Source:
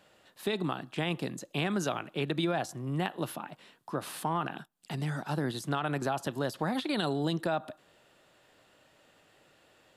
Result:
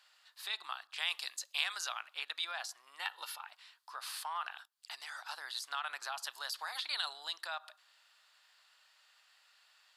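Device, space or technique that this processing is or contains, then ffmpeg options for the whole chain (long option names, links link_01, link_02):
headphones lying on a table: -filter_complex "[0:a]asettb=1/sr,asplit=3[link_01][link_02][link_03];[link_01]atrim=end=6.224[link_04];[link_02]atrim=start=6.22:end=6.78,asetpts=PTS-STARTPTS,afade=type=in:duration=0.004:curve=qsin,afade=type=out:start_time=0.556:duration=0.004:curve=qsin,highshelf=frequency=5600:gain=5.5[link_05];[link_03]atrim=start=6.776[link_06];[link_04][link_05]acrossfade=duration=0.004:curve1=hsin:curve2=qsin[link_07];[link_07][link_06]acrossfade=duration=0.004:curve1=qsin:curve2=hsin,highpass=frequency=1000:width=0.5412,highpass=frequency=1000:width=1.3066,equalizer=frequency=4600:width_type=o:width=0.52:gain=9,asettb=1/sr,asplit=3[link_08][link_09][link_10];[link_08]atrim=end=0.874[link_11];[link_09]atrim=start=0.87:end=1.81,asetpts=PTS-STARTPTS,afade=type=in:duration=0.004:curve=qsin,afade=type=out:start_time=0.936:duration=0.004:curve=qsin,adynamicequalizer=threshold=0.00501:dfrequency=2600:dqfactor=0.7:tfrequency=2600:tqfactor=0.7:attack=5:release=100:ratio=0.375:range=3.5:mode=boostabove:tftype=highshelf[link_12];[link_10]atrim=start=1.806[link_13];[link_11][link_12]acrossfade=duration=0.004:curve1=hsin:curve2=qsin[link_14];[link_14][link_13]acrossfade=duration=0.004:curve1=qsin:curve2=hsin,asettb=1/sr,asplit=3[link_15][link_16][link_17];[link_15]atrim=end=3.004[link_18];[link_16]atrim=start=3:end=3.41,asetpts=PTS-STARTPTS,afade=type=in:duration=0.004:curve=qsin,afade=type=out:start_time=0.406:duration=0.004:curve=qsin,aecho=1:1:2.2:0.65,atrim=end_sample=18081[link_19];[link_17]atrim=start=3.406[link_20];[link_18][link_19]acrossfade=duration=0.004:curve1=hsin:curve2=qsin[link_21];[link_21][link_20]acrossfade=duration=0.004:curve1=qsin:curve2=hsin,volume=-3dB"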